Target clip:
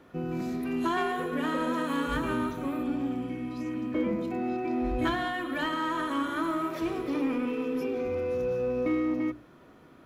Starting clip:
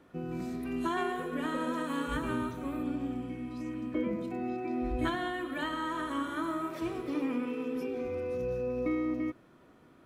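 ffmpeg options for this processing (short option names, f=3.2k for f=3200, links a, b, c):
-filter_complex "[0:a]equalizer=f=8.5k:w=6.4:g=-10.5,bandreject=f=60:t=h:w=6,bandreject=f=120:t=h:w=6,bandreject=f=180:t=h:w=6,bandreject=f=240:t=h:w=6,bandreject=f=300:t=h:w=6,bandreject=f=360:t=h:w=6,asplit=2[a][b];[b]volume=33.5dB,asoftclip=hard,volume=-33.5dB,volume=-7dB[c];[a][c]amix=inputs=2:normalize=0,volume=2dB"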